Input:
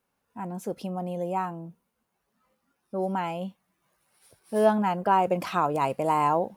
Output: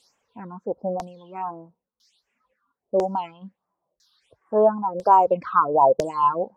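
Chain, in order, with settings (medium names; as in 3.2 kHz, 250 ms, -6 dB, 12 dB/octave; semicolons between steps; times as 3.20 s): graphic EQ 500/1000/2000/8000 Hz +7/+11/-10/+11 dB; added noise blue -54 dBFS; phase shifter stages 6, 1.4 Hz, lowest notch 570–4000 Hz; LFO low-pass saw down 1 Hz 490–6100 Hz; reverb removal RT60 1.8 s; trim -2 dB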